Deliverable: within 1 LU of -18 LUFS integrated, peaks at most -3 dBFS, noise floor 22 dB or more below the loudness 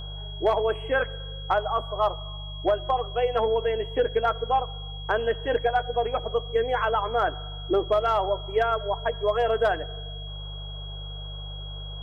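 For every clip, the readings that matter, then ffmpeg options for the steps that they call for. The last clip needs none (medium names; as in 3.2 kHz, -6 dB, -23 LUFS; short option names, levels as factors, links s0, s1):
hum 50 Hz; highest harmonic 150 Hz; hum level -34 dBFS; steady tone 3.3 kHz; tone level -40 dBFS; loudness -26.0 LUFS; peak level -12.5 dBFS; loudness target -18.0 LUFS
-> -af "bandreject=f=50:t=h:w=4,bandreject=f=100:t=h:w=4,bandreject=f=150:t=h:w=4"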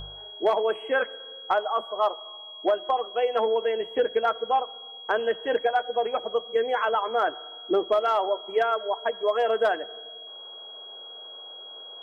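hum not found; steady tone 3.3 kHz; tone level -40 dBFS
-> -af "bandreject=f=3300:w=30"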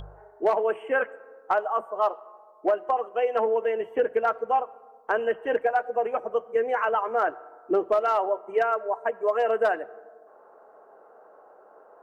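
steady tone not found; loudness -26.0 LUFS; peak level -13.0 dBFS; loudness target -18.0 LUFS
-> -af "volume=2.51"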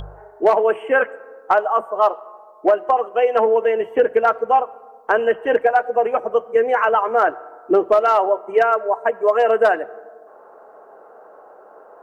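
loudness -18.0 LUFS; peak level -5.0 dBFS; noise floor -46 dBFS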